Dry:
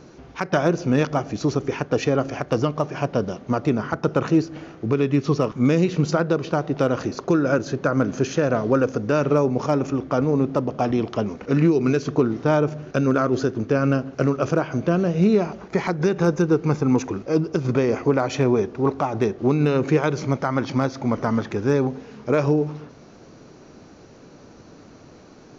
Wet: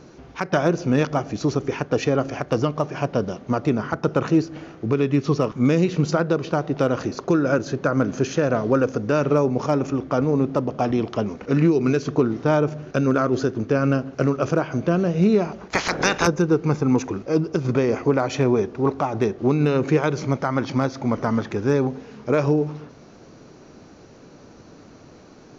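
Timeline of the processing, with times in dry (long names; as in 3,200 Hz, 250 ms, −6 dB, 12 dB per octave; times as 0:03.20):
0:15.70–0:16.26: ceiling on every frequency bin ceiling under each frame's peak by 26 dB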